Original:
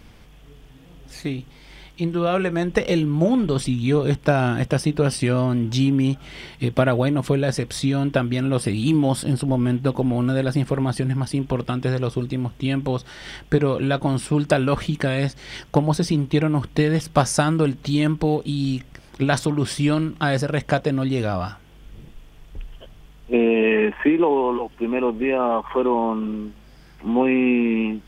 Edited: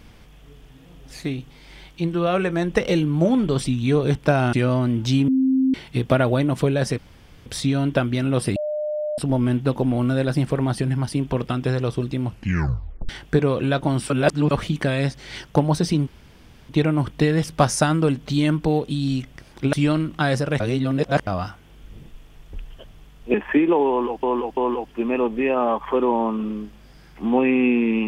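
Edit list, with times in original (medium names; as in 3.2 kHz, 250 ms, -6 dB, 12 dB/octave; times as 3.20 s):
4.53–5.20 s: delete
5.95–6.41 s: bleep 263 Hz -15 dBFS
7.65 s: insert room tone 0.48 s
8.75–9.37 s: bleep 603 Hz -22.5 dBFS
12.45 s: tape stop 0.83 s
14.29–14.70 s: reverse
16.26 s: insert room tone 0.62 s
19.30–19.75 s: delete
20.62–21.29 s: reverse
23.36–23.85 s: delete
24.40–24.74 s: loop, 3 plays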